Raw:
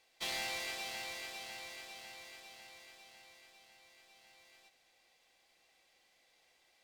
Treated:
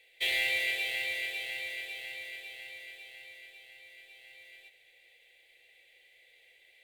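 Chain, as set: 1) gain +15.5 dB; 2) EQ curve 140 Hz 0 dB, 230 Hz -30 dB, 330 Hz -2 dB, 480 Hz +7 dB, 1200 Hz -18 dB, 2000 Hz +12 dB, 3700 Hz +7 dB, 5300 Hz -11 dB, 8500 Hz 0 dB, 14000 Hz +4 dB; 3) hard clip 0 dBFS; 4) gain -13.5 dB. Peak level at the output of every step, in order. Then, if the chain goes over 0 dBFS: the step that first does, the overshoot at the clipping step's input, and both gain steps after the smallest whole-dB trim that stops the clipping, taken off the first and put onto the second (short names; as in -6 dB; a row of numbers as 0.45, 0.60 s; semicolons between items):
-11.5, -5.0, -5.0, -18.5 dBFS; no overload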